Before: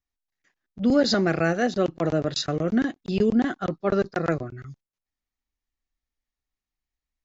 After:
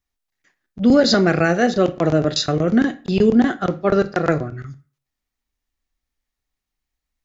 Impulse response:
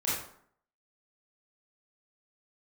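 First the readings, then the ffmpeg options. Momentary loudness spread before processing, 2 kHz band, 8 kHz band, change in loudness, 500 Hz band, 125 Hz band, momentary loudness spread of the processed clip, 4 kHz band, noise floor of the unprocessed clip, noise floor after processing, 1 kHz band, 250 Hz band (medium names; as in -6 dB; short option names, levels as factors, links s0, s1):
7 LU, +6.5 dB, no reading, +6.5 dB, +6.5 dB, +6.5 dB, 7 LU, +6.5 dB, under -85 dBFS, -83 dBFS, +6.5 dB, +6.5 dB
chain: -filter_complex "[0:a]asplit=2[s0][s1];[1:a]atrim=start_sample=2205,asetrate=70560,aresample=44100[s2];[s1][s2]afir=irnorm=-1:irlink=0,volume=0.188[s3];[s0][s3]amix=inputs=2:normalize=0,volume=1.88"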